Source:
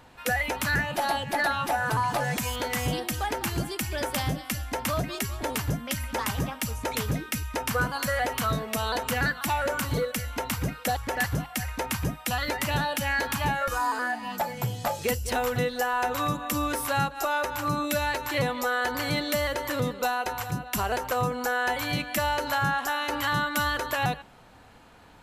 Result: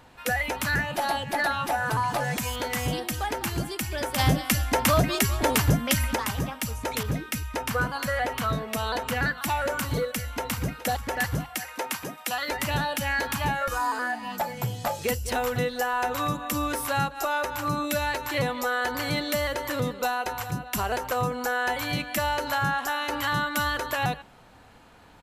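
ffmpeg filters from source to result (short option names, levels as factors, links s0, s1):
-filter_complex "[0:a]asplit=3[s0][s1][s2];[s0]afade=t=out:st=4.18:d=0.02[s3];[s1]acontrast=88,afade=t=in:st=4.18:d=0.02,afade=t=out:st=6.14:d=0.02[s4];[s2]afade=t=in:st=6.14:d=0.02[s5];[s3][s4][s5]amix=inputs=3:normalize=0,asettb=1/sr,asplit=3[s6][s7][s8];[s6]atrim=end=7.034[s9];[s7]atrim=start=7.03:end=9.38,asetpts=PTS-STARTPTS,afade=t=in:d=0.004:c=qsin,afade=t=out:st=2.346:d=0.004:c=qsin,adynamicequalizer=threshold=0.00562:dfrequency=4400:dqfactor=0.7:tfrequency=4400:tqfactor=0.7:attack=5:release=100:ratio=0.375:range=3:mode=cutabove:tftype=highshelf[s10];[s8]atrim=start=9.376[s11];[s9][s10]acrossfade=d=0.004:c1=hsin:c2=qsin[s12];[s12][s11]acrossfade=d=0.004:c1=qsin:c2=hsin,asplit=2[s13][s14];[s14]afade=t=in:st=10.02:d=0.01,afade=t=out:st=10.58:d=0.01,aecho=0:1:420|840|1260|1680|2100|2520:0.149624|0.0897741|0.0538645|0.0323187|0.0193912|0.0116347[s15];[s13][s15]amix=inputs=2:normalize=0,asettb=1/sr,asplit=3[s16][s17][s18];[s16]atrim=end=11.574[s19];[s17]atrim=start=11.57:end=12.51,asetpts=PTS-STARTPTS,afade=t=in:d=0.004:c=qsin,afade=t=out:st=0.936:d=0.004:c=qsin,highpass=310[s20];[s18]atrim=start=12.506[s21];[s19][s20]acrossfade=d=0.004:c1=hsin:c2=qsin[s22];[s22][s21]acrossfade=d=0.004:c1=qsin:c2=hsin"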